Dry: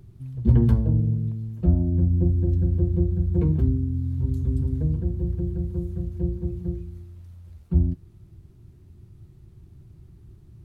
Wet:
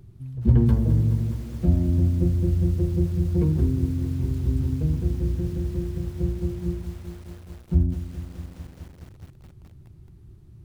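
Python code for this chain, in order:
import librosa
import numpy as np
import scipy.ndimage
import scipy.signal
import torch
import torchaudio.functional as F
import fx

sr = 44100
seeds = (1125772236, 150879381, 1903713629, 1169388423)

y = fx.highpass(x, sr, hz=56.0, slope=12, at=(0.69, 1.9))
y = fx.hum_notches(y, sr, base_hz=60, count=2, at=(2.61, 3.82), fade=0.02)
y = fx.echo_crushed(y, sr, ms=210, feedback_pct=80, bits=7, wet_db=-12)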